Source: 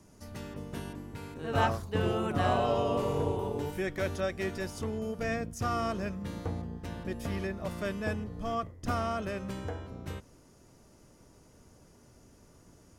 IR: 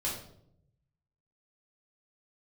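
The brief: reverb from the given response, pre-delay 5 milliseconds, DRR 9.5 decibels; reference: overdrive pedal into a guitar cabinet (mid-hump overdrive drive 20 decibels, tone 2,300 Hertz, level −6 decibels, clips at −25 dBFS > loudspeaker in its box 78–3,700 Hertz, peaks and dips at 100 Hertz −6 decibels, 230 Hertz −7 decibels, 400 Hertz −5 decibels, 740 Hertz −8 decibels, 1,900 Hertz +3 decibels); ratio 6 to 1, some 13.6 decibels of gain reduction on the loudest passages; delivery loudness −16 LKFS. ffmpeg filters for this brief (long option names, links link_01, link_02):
-filter_complex "[0:a]acompressor=threshold=-38dB:ratio=6,asplit=2[link_01][link_02];[1:a]atrim=start_sample=2205,adelay=5[link_03];[link_02][link_03]afir=irnorm=-1:irlink=0,volume=-14dB[link_04];[link_01][link_04]amix=inputs=2:normalize=0,asplit=2[link_05][link_06];[link_06]highpass=frequency=720:poles=1,volume=20dB,asoftclip=type=tanh:threshold=-25dB[link_07];[link_05][link_07]amix=inputs=2:normalize=0,lowpass=frequency=2300:poles=1,volume=-6dB,highpass=78,equalizer=frequency=100:width_type=q:width=4:gain=-6,equalizer=frequency=230:width_type=q:width=4:gain=-7,equalizer=frequency=400:width_type=q:width=4:gain=-5,equalizer=frequency=740:width_type=q:width=4:gain=-8,equalizer=frequency=1900:width_type=q:width=4:gain=3,lowpass=frequency=3700:width=0.5412,lowpass=frequency=3700:width=1.3066,volume=22.5dB"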